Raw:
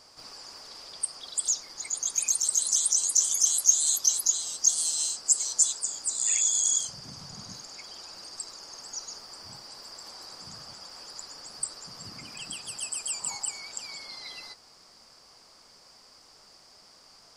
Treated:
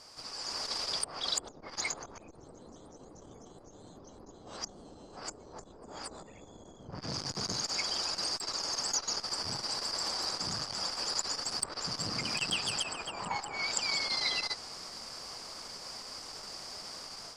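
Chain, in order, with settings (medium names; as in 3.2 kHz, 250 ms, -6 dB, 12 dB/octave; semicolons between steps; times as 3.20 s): low-pass that closes with the level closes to 390 Hz, closed at -25 dBFS; level rider gain up to 10.5 dB; transformer saturation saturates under 1.9 kHz; trim +1 dB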